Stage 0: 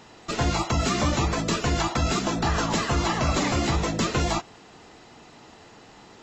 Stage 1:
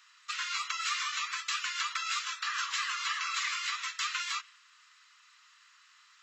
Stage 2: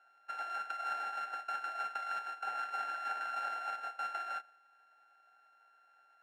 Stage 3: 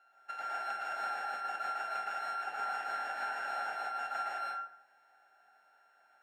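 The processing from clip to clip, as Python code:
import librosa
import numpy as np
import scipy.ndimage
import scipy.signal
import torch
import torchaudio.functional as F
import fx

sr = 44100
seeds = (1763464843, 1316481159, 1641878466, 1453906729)

y1 = scipy.signal.sosfilt(scipy.signal.butter(12, 1100.0, 'highpass', fs=sr, output='sos'), x)
y1 = fx.dynamic_eq(y1, sr, hz=2600.0, q=0.77, threshold_db=-44.0, ratio=4.0, max_db=6)
y1 = F.gain(torch.from_numpy(y1), -7.0).numpy()
y2 = np.r_[np.sort(y1[:len(y1) // 32 * 32].reshape(-1, 32), axis=1).ravel(), y1[len(y1) // 32 * 32:]]
y2 = fx.double_bandpass(y2, sr, hz=1100.0, octaves=0.95)
y2 = F.gain(torch.from_numpy(y2), 5.0).numpy()
y3 = fx.rev_plate(y2, sr, seeds[0], rt60_s=0.68, hf_ratio=0.6, predelay_ms=100, drr_db=-4.0)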